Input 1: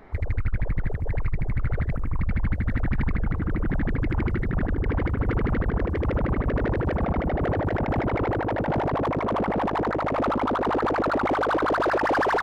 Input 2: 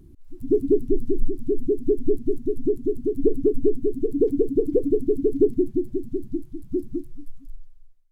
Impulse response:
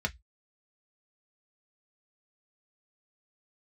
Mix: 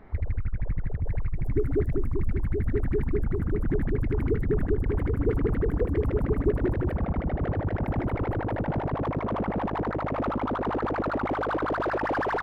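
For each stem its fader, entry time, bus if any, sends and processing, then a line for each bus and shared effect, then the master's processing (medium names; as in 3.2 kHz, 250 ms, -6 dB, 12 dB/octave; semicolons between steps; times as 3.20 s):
-4.5 dB, 0.00 s, no send, tone controls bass +6 dB, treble -7 dB; compression, threshold -18 dBFS, peak gain reduction 6.5 dB
-6.0 dB, 1.05 s, muted 6.97–7.85 s, no send, bass shelf 180 Hz -9.5 dB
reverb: none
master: none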